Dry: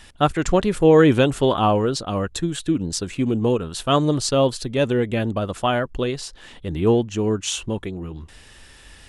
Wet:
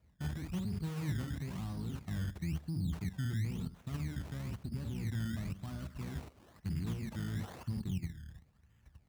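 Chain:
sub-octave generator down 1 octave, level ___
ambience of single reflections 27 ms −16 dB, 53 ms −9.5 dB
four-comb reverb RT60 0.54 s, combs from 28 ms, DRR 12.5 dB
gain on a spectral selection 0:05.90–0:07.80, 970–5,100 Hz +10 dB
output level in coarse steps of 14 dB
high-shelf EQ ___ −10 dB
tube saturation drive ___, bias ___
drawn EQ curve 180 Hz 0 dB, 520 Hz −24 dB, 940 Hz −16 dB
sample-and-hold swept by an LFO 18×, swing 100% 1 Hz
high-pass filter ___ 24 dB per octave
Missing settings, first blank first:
−3 dB, 7,600 Hz, 28 dB, 0.6, 56 Hz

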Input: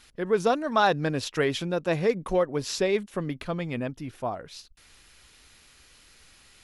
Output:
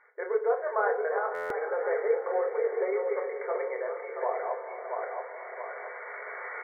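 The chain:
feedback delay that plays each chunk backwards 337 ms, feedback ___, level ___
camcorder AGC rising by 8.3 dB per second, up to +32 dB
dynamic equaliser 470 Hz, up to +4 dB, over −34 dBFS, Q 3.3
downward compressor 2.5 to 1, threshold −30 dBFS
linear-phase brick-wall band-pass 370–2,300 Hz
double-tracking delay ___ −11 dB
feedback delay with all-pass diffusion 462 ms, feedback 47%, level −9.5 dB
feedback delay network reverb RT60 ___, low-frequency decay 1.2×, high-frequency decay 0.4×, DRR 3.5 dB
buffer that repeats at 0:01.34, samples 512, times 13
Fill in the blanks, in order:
48%, −7 dB, 26 ms, 0.42 s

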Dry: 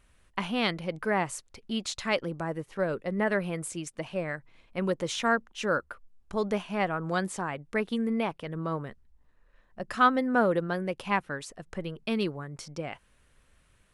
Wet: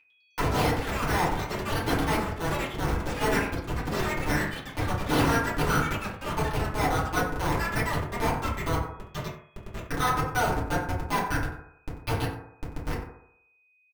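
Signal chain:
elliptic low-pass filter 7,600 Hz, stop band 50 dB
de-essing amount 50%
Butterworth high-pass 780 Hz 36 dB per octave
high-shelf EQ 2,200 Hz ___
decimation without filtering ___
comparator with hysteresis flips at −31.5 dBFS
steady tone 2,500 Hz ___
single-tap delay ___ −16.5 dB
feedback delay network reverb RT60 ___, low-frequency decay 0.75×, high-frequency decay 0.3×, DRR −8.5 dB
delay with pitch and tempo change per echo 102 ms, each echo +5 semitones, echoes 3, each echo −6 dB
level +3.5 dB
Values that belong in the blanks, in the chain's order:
+4 dB, 6×, −61 dBFS, 91 ms, 0.76 s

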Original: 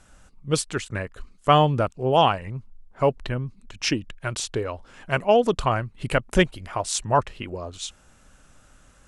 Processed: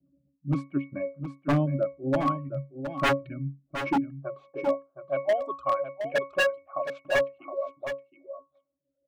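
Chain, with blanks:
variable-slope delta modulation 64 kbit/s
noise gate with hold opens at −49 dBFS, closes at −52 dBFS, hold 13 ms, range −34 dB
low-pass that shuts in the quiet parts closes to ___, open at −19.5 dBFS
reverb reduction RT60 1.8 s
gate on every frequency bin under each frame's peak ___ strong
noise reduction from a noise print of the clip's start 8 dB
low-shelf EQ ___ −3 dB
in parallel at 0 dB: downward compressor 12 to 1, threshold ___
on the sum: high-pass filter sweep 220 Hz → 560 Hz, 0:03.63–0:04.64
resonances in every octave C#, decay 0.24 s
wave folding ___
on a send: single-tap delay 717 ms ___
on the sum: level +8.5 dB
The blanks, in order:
300 Hz, −35 dB, 150 Hz, −33 dBFS, −25.5 dBFS, −9 dB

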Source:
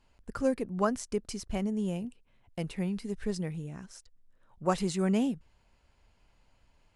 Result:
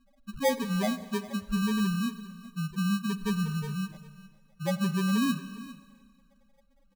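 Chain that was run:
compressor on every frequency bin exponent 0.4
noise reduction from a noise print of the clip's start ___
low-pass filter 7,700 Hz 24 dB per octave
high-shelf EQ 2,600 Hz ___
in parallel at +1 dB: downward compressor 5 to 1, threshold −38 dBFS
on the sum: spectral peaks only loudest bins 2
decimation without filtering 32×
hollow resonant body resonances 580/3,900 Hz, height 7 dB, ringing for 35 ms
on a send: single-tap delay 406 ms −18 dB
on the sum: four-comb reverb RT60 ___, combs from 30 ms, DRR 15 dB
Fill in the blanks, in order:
22 dB, +2.5 dB, 1.9 s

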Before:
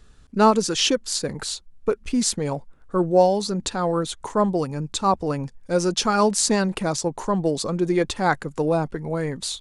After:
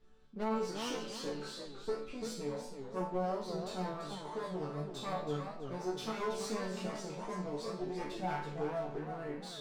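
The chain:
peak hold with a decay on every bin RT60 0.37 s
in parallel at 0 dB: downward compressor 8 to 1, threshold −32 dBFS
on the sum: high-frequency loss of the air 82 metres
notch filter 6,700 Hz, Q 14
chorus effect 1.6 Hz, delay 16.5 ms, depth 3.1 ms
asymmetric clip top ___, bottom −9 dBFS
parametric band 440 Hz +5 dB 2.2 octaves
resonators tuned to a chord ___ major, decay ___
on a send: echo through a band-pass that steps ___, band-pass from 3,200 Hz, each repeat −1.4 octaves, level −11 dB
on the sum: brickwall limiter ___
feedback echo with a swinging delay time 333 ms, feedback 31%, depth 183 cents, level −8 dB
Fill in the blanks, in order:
−28 dBFS, D3, 0.41 s, 166 ms, −25.5 dBFS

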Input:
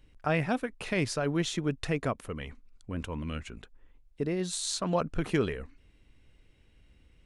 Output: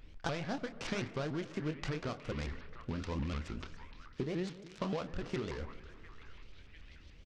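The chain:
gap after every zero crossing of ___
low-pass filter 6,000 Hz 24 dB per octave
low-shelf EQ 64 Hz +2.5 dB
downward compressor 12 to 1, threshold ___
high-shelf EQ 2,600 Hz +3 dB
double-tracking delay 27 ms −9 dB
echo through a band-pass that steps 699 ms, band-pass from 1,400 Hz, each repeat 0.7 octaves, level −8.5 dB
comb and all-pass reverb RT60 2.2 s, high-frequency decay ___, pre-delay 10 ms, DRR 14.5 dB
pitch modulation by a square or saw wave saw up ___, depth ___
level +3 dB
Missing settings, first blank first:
0.17 ms, −37 dBFS, 0.3×, 6.9 Hz, 250 cents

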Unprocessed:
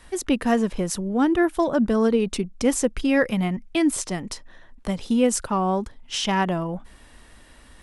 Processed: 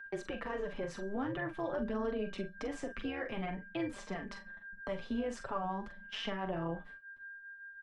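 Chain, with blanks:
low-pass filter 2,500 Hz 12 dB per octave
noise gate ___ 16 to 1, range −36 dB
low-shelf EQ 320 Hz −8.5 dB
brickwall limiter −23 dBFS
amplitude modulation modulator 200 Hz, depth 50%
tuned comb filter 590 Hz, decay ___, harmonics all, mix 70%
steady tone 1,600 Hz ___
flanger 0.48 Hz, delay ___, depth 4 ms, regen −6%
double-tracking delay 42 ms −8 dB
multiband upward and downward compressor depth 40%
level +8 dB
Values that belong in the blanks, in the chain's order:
−42 dBFS, 0.26 s, −60 dBFS, 4.3 ms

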